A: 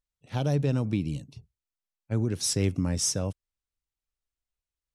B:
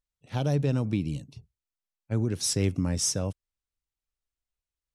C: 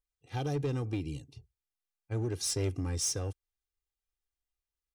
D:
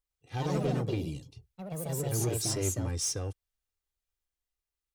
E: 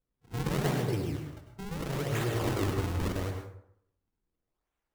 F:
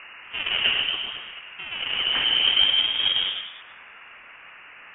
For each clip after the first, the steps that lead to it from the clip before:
no processing that can be heard
comb filter 2.5 ms, depth 79%; in parallel at −8 dB: wave folding −23.5 dBFS; on the sum: level −8.5 dB
delay with pitch and tempo change per echo 111 ms, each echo +3 semitones, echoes 3
in parallel at 0 dB: downward compressor, threshold −37 dBFS, peak gain reduction 11 dB; on the sum: sample-and-hold swept by an LFO 42×, swing 160% 0.79 Hz; dense smooth reverb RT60 0.7 s, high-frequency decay 0.55×, pre-delay 85 ms, DRR 3.5 dB; level −4 dB
noise in a band 610–2,400 Hz −54 dBFS; high-pass filter sweep 610 Hz → 140 Hz, 0:01.91–0:03.97; voice inversion scrambler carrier 3,500 Hz; level +8 dB

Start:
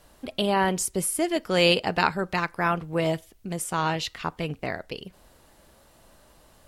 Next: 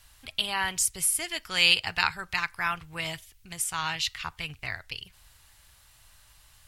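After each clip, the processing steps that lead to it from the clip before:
drawn EQ curve 110 Hz 0 dB, 200 Hz −18 dB, 560 Hz −19 dB, 840 Hz −8 dB, 2,300 Hz +3 dB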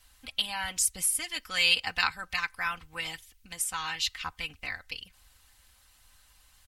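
comb filter 3.9 ms, depth 78%
harmonic and percussive parts rebalanced percussive +6 dB
level −8 dB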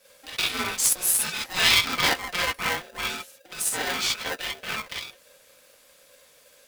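reverb whose tail is shaped and stops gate 80 ms rising, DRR −4.5 dB
ring modulator with a square carrier 540 Hz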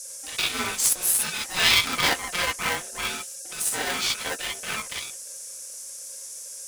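noise in a band 5,400–11,000 Hz −39 dBFS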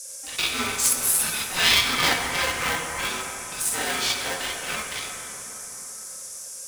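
dense smooth reverb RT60 4.3 s, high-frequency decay 0.4×, DRR 2.5 dB

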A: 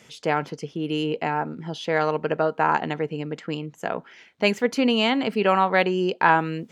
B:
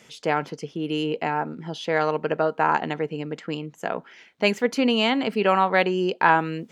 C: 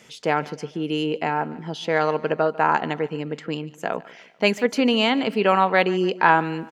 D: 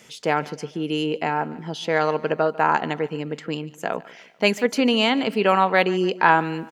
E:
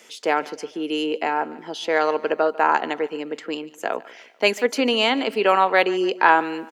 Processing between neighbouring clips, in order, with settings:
parametric band 95 Hz −6.5 dB 0.85 octaves
repeating echo 147 ms, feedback 47%, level −20.5 dB; level +1.5 dB
high-shelf EQ 7,100 Hz +6 dB
high-pass filter 270 Hz 24 dB per octave; level +1 dB

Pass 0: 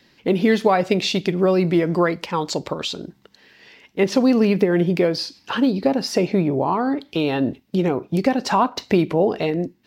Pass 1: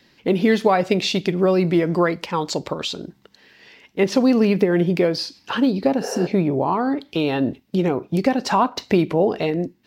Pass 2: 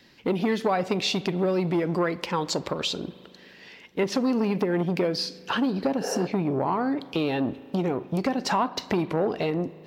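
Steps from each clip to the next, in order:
healed spectral selection 0:06.04–0:06.24, 390–5,200 Hz before
downward compressor 2 to 1, threshold −24 dBFS, peak gain reduction 7 dB; spring reverb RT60 2.9 s, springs 38 ms, chirp 30 ms, DRR 18.5 dB; saturating transformer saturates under 580 Hz

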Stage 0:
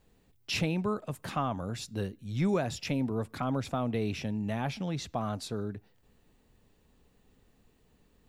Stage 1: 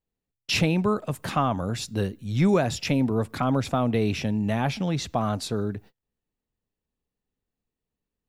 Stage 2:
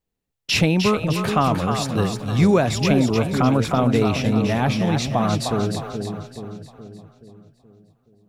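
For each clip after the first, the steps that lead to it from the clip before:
noise gate −53 dBFS, range −29 dB; level +7.5 dB
echo with a time of its own for lows and highs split 510 Hz, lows 425 ms, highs 305 ms, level −6 dB; level +4.5 dB

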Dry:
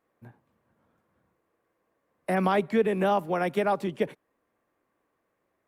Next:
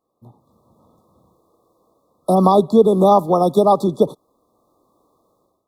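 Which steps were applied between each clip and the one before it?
brick-wall band-stop 1,300–3,400 Hz
automatic gain control gain up to 15 dB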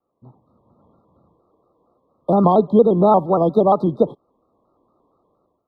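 high-frequency loss of the air 410 metres
pitch modulation by a square or saw wave square 4.3 Hz, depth 100 cents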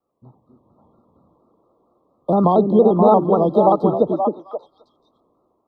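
echo through a band-pass that steps 264 ms, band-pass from 300 Hz, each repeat 1.4 octaves, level −0.5 dB
level −1 dB

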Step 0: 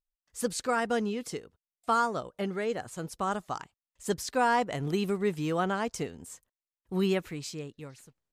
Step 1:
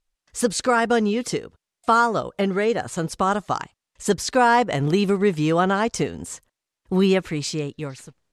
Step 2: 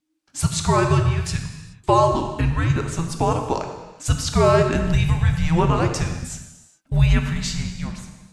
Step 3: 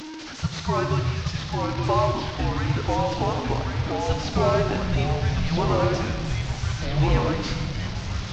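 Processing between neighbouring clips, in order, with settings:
in parallel at +1.5 dB: downward compressor, threshold −35 dBFS, peak gain reduction 13.5 dB; on the sum: Bessel low-pass filter 8,500 Hz, order 8; level +6.5 dB
frequency shifter −330 Hz; reverb whose tail is shaped and stops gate 450 ms falling, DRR 4 dB
linear delta modulator 32 kbit/s, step −24.5 dBFS; delay with pitch and tempo change per echo 763 ms, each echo −2 semitones, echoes 3; level −6 dB

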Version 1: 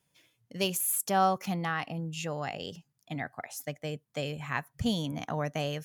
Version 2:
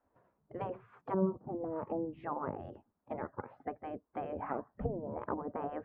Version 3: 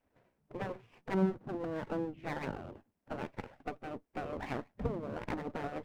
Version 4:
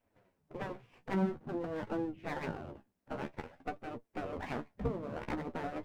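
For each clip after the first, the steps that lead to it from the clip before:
gate on every frequency bin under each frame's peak −10 dB weak; low-pass filter 1,200 Hz 24 dB per octave; treble cut that deepens with the level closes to 330 Hz, closed at −38 dBFS; level +9 dB
lower of the sound and its delayed copy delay 0.36 ms; level +1 dB
flanger 0.5 Hz, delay 8.4 ms, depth 7.8 ms, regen +31%; level +3.5 dB

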